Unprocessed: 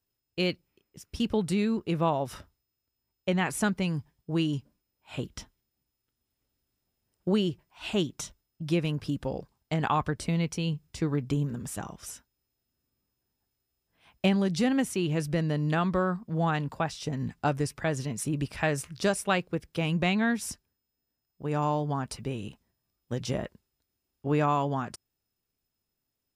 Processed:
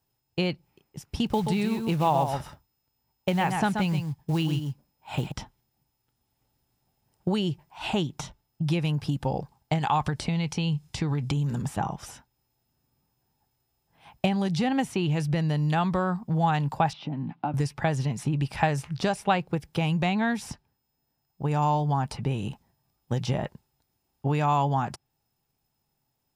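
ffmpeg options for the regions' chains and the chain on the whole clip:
-filter_complex "[0:a]asettb=1/sr,asplit=3[a][b][c];[a]atrim=end=1.264[d];[b]atrim=start=1.26:end=5.32,asetpts=PTS-STARTPTS,afade=t=in:d=0.004:c=qsin,afade=t=out:st=4.056:d=0.004:c=qsin,acrusher=bits=6:mode=log:mix=0:aa=0.000001,aecho=1:1:129:0.398,atrim=end_sample=179046[e];[c]atrim=start=5.316[f];[d][e]acrossfade=d=0.004:c1=hsin:c2=qsin[g];[g][f]acrossfade=d=0.004:c1=qsin:c2=hsin,asettb=1/sr,asplit=3[h][i][j];[h]atrim=end=9.784[k];[i]atrim=start=9.78:end=11.62,asetpts=PTS-STARTPTS,afade=t=in:d=0.004:c=qsin,afade=t=out:st=1.836:d=0.004:c=qsin,highshelf=f=2.7k:g=10.5,acompressor=threshold=-29dB:ratio=3:attack=3.2:release=140:knee=1:detection=peak,lowpass=11k[l];[j]atrim=start=11.616[m];[k][l]acrossfade=d=0.004:c1=hsin:c2=qsin[n];[n][m]acrossfade=d=0.004:c1=qsin:c2=hsin,asettb=1/sr,asplit=3[o][p][q];[o]atrim=end=16.934[r];[p]atrim=start=16.93:end=17.54,asetpts=PTS-STARTPTS,afade=t=in:d=0.004:c=qsin,afade=t=out:st=0.606:d=0.004:c=qsin,acompressor=threshold=-35dB:ratio=12:attack=3.2:release=140:knee=1:detection=peak,highpass=f=150:w=0.5412,highpass=f=150:w=1.3066,equalizer=f=300:t=q:w=4:g=8,equalizer=f=440:t=q:w=4:g=-9,equalizer=f=1.8k:t=q:w=4:g=-7,lowpass=f=3.3k:w=0.5412,lowpass=f=3.3k:w=1.3066[s];[q]atrim=start=17.536[t];[r][s]acrossfade=d=0.004:c1=hsin:c2=qsin[u];[u][t]acrossfade=d=0.004:c1=qsin:c2=hsin,equalizer=f=140:t=o:w=0.75:g=8.5,acrossover=split=2100|4400[v][w][x];[v]acompressor=threshold=-29dB:ratio=4[y];[w]acompressor=threshold=-39dB:ratio=4[z];[x]acompressor=threshold=-52dB:ratio=4[aa];[y][z][aa]amix=inputs=3:normalize=0,equalizer=f=830:t=o:w=0.47:g=12,volume=4.5dB"

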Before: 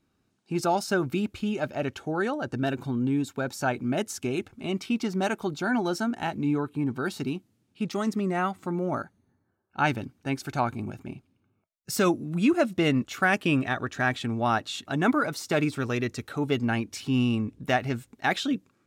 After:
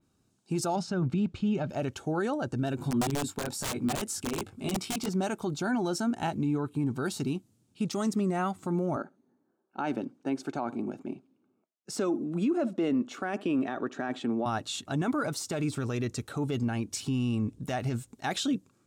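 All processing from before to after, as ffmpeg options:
-filter_complex "[0:a]asettb=1/sr,asplit=3[a][b][c];[a]atrim=end=0.764[d];[b]atrim=start=0.76:end=1.7,asetpts=PTS-STARTPTS,afade=t=in:d=0.004:c=qsin,afade=t=out:st=0.936:d=0.004:c=qsin,lowpass=3.7k,equalizer=f=170:t=o:w=0.38:g=12[e];[c]atrim=start=1.696[f];[d][e]acrossfade=d=0.004:c1=hsin:c2=qsin[g];[g][f]acrossfade=d=0.004:c1=qsin:c2=hsin,asettb=1/sr,asplit=3[h][i][j];[h]atrim=end=2.774[k];[i]atrim=start=2.77:end=5.09,asetpts=PTS-STARTPTS,afade=t=in:d=0.004:c=qsin,afade=t=out:st=2.316:d=0.004:c=qsin,equalizer=f=6.3k:t=o:w=0.22:g=-6,asplit=2[l][m];[m]adelay=20,volume=-3dB[n];[l][n]amix=inputs=2:normalize=0,atrim=end_sample=102312,aeval=exprs='(mod(9.44*val(0)+1,2)-1)/9.44':c=same[o];[j]atrim=start=5.086[p];[k][o]acrossfade=d=0.004:c1=hsin:c2=qsin[q];[q][p]acrossfade=d=0.004:c1=qsin:c2=hsin,asettb=1/sr,asplit=3[r][s][t];[r]atrim=end=8.964[u];[s]atrim=start=8.96:end=14.46,asetpts=PTS-STARTPTS,afade=t=in:d=0.004:c=qsin,afade=t=out:st=5.496:d=0.004:c=qsin,highpass=f=270:w=0.5412,highpass=f=270:w=1.3066,aemphasis=mode=reproduction:type=riaa,asplit=2[v][w];[w]adelay=67,lowpass=f=1.3k:p=1,volume=-23.5dB,asplit=2[x][y];[y]adelay=67,lowpass=f=1.3k:p=1,volume=0.21[z];[v][x][z]amix=inputs=3:normalize=0,atrim=end_sample=242550[aa];[t]atrim=start=14.456[ab];[u][aa]acrossfade=d=0.004:c1=hsin:c2=qsin[ac];[ac][ab]acrossfade=d=0.004:c1=qsin:c2=hsin,equalizer=f=125:t=o:w=1:g=3,equalizer=f=2k:t=o:w=1:g=-6,equalizer=f=8k:t=o:w=1:g=8,alimiter=limit=-21dB:level=0:latency=1:release=37,adynamicequalizer=threshold=0.00355:dfrequency=3900:dqfactor=0.7:tfrequency=3900:tqfactor=0.7:attack=5:release=100:ratio=0.375:range=2:mode=cutabove:tftype=highshelf"

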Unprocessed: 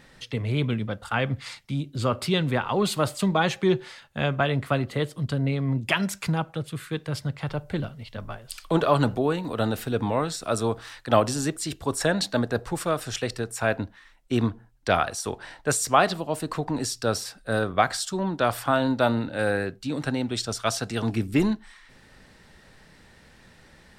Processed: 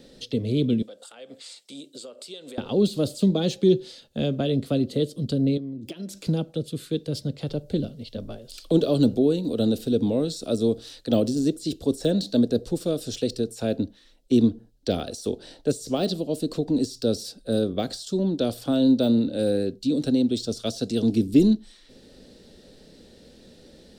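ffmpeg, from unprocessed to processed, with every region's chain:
-filter_complex "[0:a]asettb=1/sr,asplit=3[a][b][c];[a]atrim=end=0.824[d];[b]atrim=start=0.82:end=2.58,asetpts=PTS-STARTPTS,afade=t=in:d=0.004:c=qsin,afade=t=out:st=1.756:d=0.004:c=qsin,highpass=610,equalizer=f=8k:w=2.5:g=11.5,acompressor=threshold=-42dB:ratio=4:attack=3.2:release=140:knee=1:detection=peak[e];[c]atrim=start=2.576[f];[d][e]acrossfade=d=0.004:c1=hsin:c2=qsin[g];[g][f]acrossfade=d=0.004:c1=qsin:c2=hsin,asettb=1/sr,asplit=3[h][i][j];[h]atrim=end=5.574[k];[i]atrim=start=5.57:end=6.27,asetpts=PTS-STARTPTS,afade=t=in:d=0.004:c=qsin,afade=t=out:st=0.696:d=0.004:c=qsin,acompressor=threshold=-35dB:ratio=16:attack=3.2:release=140:knee=1:detection=peak,equalizer=f=320:w=4.7:g=8[l];[j]atrim=start=6.266[m];[k][l]acrossfade=d=0.004:c1=hsin:c2=qsin[n];[n][m]acrossfade=d=0.004:c1=qsin:c2=hsin,deesser=0.75,equalizer=f=125:t=o:w=1:g=-4,equalizer=f=250:t=o:w=1:g=8,equalizer=f=500:t=o:w=1:g=11,equalizer=f=1k:t=o:w=1:g=-12,equalizer=f=2k:t=o:w=1:g=-10,equalizer=f=4k:t=o:w=1:g=8,acrossover=split=340|3000[o][p][q];[p]acompressor=threshold=-44dB:ratio=1.5[r];[o][r][q]amix=inputs=3:normalize=0"

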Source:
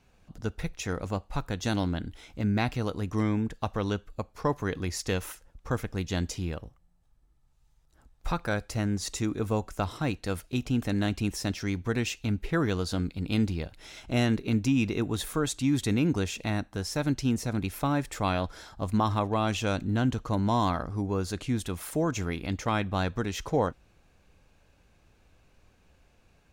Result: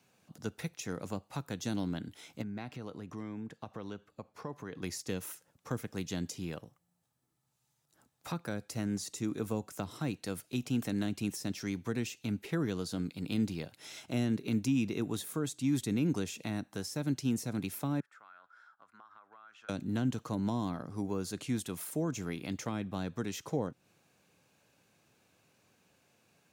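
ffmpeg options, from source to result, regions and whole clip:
-filter_complex "[0:a]asettb=1/sr,asplit=3[a][b][c];[a]atrim=end=2.424[d];[b]atrim=start=2.42:end=4.83,asetpts=PTS-STARTPTS,afade=t=in:d=0.004:c=qsin,afade=t=out:st=2.406:d=0.004:c=qsin,lowpass=f=2.4k:p=1,acompressor=threshold=-36dB:ratio=2.5:attack=3.2:release=140:knee=1:detection=peak[e];[c]atrim=start=4.826[f];[d][e]acrossfade=d=0.004:c1=hsin:c2=qsin[g];[g][f]acrossfade=d=0.004:c1=qsin:c2=hsin,asettb=1/sr,asplit=3[h][i][j];[h]atrim=end=18.004[k];[i]atrim=start=18:end=19.69,asetpts=PTS-STARTPTS,afade=t=in:d=0.004:c=qsin,afade=t=out:st=1.686:d=0.004:c=qsin,bandpass=f=1.4k:t=q:w=7.9,acompressor=threshold=-49dB:ratio=5:attack=3.2:release=140:knee=1:detection=peak[l];[j]atrim=start=19.686[m];[k][l]acrossfade=d=0.004:c1=hsin:c2=qsin[n];[n][m]acrossfade=d=0.004:c1=qsin:c2=hsin,highpass=f=120:w=0.5412,highpass=f=120:w=1.3066,highshelf=f=5.8k:g=10,acrossover=split=420[o][p];[p]acompressor=threshold=-36dB:ratio=6[q];[o][q]amix=inputs=2:normalize=0,volume=-4dB"

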